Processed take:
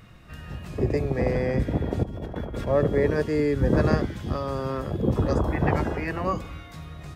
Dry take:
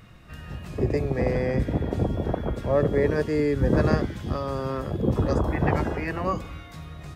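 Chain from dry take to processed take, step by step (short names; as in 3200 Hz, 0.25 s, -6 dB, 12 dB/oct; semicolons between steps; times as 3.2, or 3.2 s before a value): 2.03–2.67 negative-ratio compressor -33 dBFS, ratio -1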